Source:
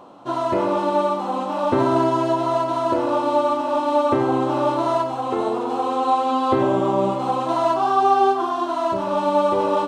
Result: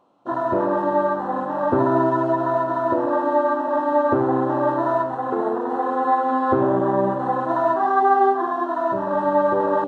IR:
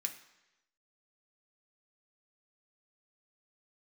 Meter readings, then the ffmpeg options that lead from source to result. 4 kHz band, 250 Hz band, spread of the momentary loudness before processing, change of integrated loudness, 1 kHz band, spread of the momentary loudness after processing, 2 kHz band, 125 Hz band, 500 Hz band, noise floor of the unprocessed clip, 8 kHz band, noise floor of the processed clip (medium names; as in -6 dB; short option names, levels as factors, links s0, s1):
under -15 dB, 0.0 dB, 5 LU, 0.0 dB, -0.5 dB, 5 LU, +3.5 dB, 0.0 dB, 0.0 dB, -26 dBFS, no reading, -27 dBFS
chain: -af "afwtdn=0.0708"